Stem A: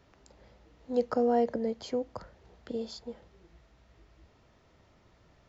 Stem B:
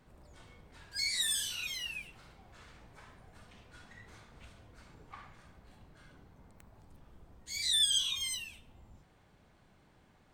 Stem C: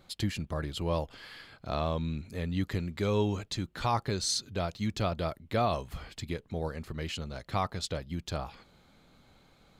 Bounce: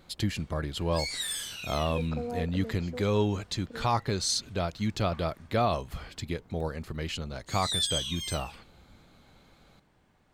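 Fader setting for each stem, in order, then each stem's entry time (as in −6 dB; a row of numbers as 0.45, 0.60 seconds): −9.5, −1.5, +2.0 decibels; 1.00, 0.00, 0.00 seconds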